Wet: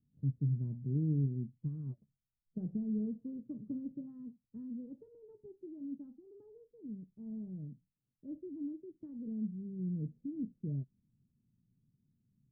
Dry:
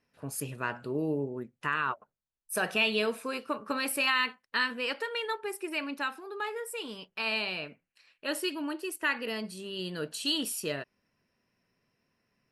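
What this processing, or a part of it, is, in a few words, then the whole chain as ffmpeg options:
the neighbour's flat through the wall: -af "lowpass=f=230:w=0.5412,lowpass=f=230:w=1.3066,equalizer=f=130:t=o:w=0.51:g=6.5,volume=1.58"

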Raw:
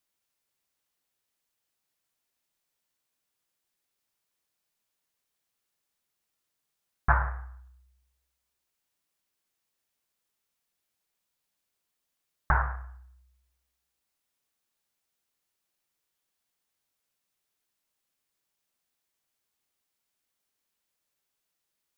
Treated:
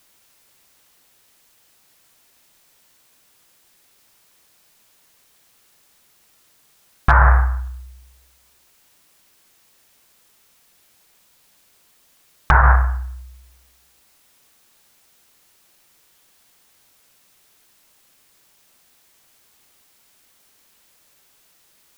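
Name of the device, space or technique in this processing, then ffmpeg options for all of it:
loud club master: -af "acompressor=threshold=0.0501:ratio=2.5,asoftclip=type=hard:threshold=0.141,alimiter=level_in=21.1:limit=0.891:release=50:level=0:latency=1,volume=0.794"

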